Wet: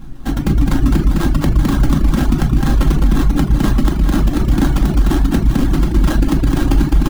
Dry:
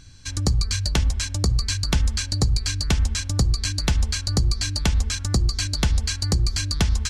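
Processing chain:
comb filter 5.6 ms, depth 80%
sample-rate reduction 2,300 Hz, jitter 20%
low shelf with overshoot 380 Hz +7 dB, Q 3
downward compressor, threshold −14 dBFS, peak gain reduction 9 dB
bouncing-ball delay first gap 210 ms, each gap 0.9×, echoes 5
convolution reverb RT60 0.60 s, pre-delay 4 ms, DRR 1 dB
reverb reduction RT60 0.59 s
boost into a limiter +5.5 dB
level −3 dB

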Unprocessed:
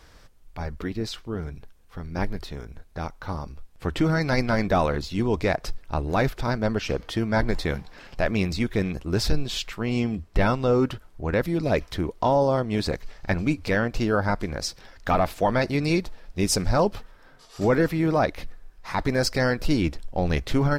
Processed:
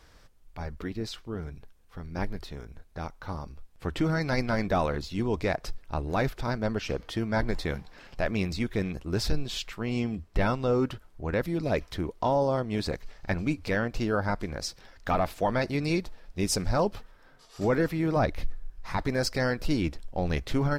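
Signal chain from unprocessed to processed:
0:18.16–0:18.97: low-shelf EQ 140 Hz +11.5 dB
level −4.5 dB

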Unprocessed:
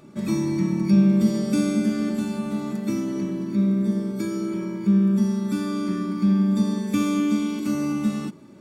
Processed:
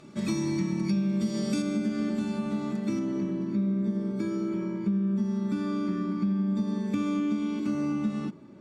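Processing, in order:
high-shelf EQ 2,600 Hz +10.5 dB, from 0:01.62 +2 dB, from 0:02.99 −4 dB
downward compressor 6 to 1, threshold −22 dBFS, peak gain reduction 9.5 dB
high-frequency loss of the air 71 metres
level −2 dB

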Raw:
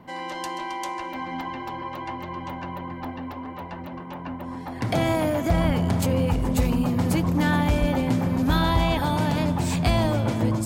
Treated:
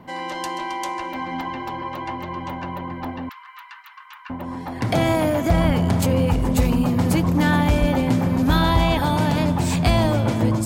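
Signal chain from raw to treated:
0:03.29–0:04.30: Butterworth high-pass 1,100 Hz 48 dB per octave
level +3.5 dB

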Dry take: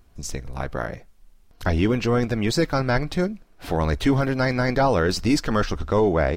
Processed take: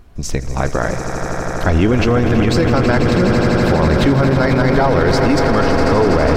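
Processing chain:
high-shelf EQ 4,300 Hz −8.5 dB
on a send: echo that builds up and dies away 82 ms, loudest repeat 8, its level −11 dB
on the sum: boost into a limiter +15.5 dB
level −4 dB

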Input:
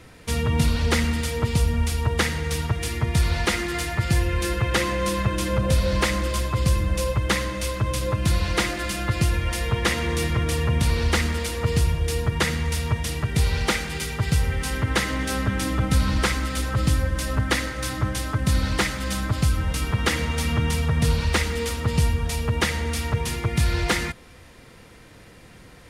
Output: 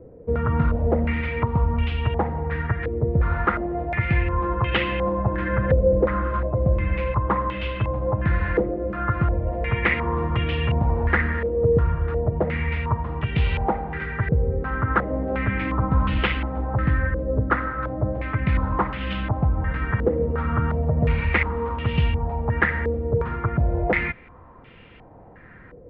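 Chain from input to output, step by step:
high-frequency loss of the air 400 metres
low-pass on a step sequencer 2.8 Hz 490–2,900 Hz

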